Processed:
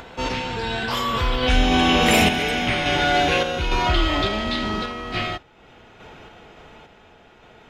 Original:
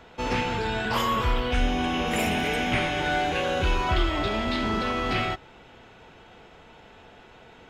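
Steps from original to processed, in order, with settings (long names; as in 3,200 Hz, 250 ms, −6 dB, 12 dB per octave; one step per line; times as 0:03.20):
source passing by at 0:02.28, 11 m/s, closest 10 metres
in parallel at −2 dB: brickwall limiter −24.5 dBFS, peak gain reduction 11 dB
on the sum: upward compression, threshold −40 dBFS
sample-and-hold tremolo
dynamic equaliser 4,200 Hz, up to +6 dB, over −48 dBFS, Q 1.3
level +7 dB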